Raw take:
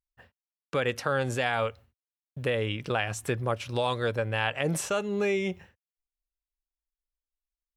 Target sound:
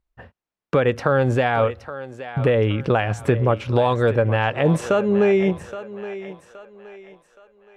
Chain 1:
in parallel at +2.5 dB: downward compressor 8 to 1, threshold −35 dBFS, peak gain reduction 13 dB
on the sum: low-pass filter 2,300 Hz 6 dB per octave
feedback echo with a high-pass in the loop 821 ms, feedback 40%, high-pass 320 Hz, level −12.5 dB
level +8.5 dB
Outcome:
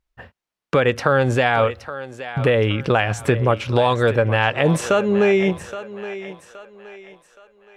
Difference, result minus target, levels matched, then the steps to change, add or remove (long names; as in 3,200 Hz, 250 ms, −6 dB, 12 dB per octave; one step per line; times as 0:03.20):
2,000 Hz band +3.5 dB
change: low-pass filter 940 Hz 6 dB per octave